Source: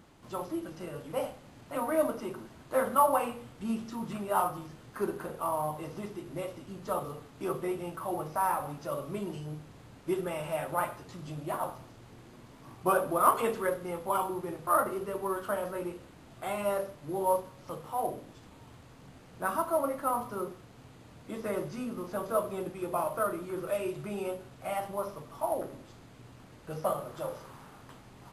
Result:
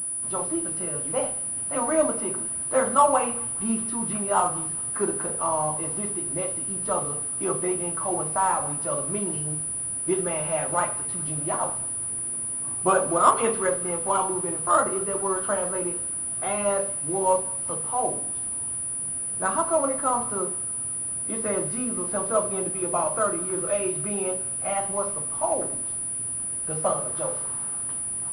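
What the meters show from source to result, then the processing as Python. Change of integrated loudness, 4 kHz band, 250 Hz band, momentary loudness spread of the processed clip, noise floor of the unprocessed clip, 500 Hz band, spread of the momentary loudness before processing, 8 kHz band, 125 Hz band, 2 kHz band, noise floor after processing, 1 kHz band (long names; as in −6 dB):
+8.5 dB, +4.5 dB, +5.5 dB, 5 LU, −54 dBFS, +5.5 dB, 21 LU, +24.0 dB, +5.5 dB, +5.5 dB, −31 dBFS, +5.5 dB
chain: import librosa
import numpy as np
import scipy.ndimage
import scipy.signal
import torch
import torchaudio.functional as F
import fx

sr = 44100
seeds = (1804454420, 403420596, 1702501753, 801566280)

y = fx.echo_thinned(x, sr, ms=208, feedback_pct=83, hz=1200.0, wet_db=-21.0)
y = fx.pwm(y, sr, carrier_hz=9800.0)
y = y * librosa.db_to_amplitude(5.5)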